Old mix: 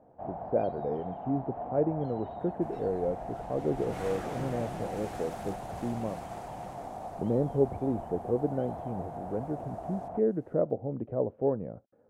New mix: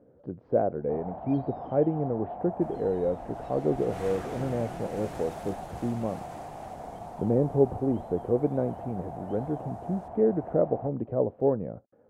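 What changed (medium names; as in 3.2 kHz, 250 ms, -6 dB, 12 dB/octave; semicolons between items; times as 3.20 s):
speech +3.5 dB; first sound: entry +0.70 s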